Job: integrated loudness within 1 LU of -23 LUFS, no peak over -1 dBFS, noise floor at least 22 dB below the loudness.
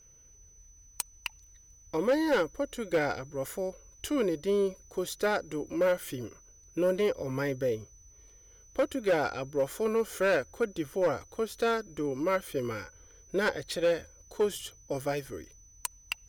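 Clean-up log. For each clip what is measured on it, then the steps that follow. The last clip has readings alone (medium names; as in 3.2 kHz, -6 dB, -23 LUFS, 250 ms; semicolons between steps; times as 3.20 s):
clipped samples 0.8%; clipping level -20.5 dBFS; steady tone 6 kHz; tone level -56 dBFS; loudness -31.0 LUFS; peak level -20.5 dBFS; loudness target -23.0 LUFS
-> clip repair -20.5 dBFS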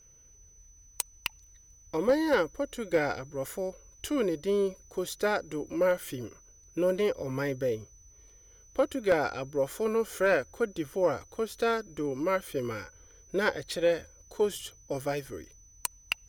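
clipped samples 0.0%; steady tone 6 kHz; tone level -56 dBFS
-> band-stop 6 kHz, Q 30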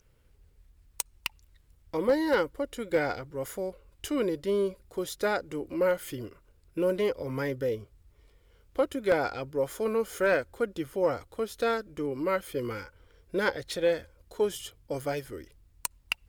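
steady tone not found; loudness -30.5 LUFS; peak level -11.0 dBFS; loudness target -23.0 LUFS
-> trim +7.5 dB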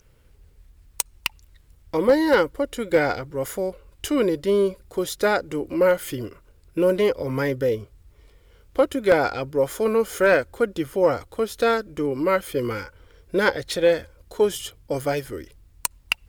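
loudness -23.0 LUFS; peak level -3.5 dBFS; noise floor -56 dBFS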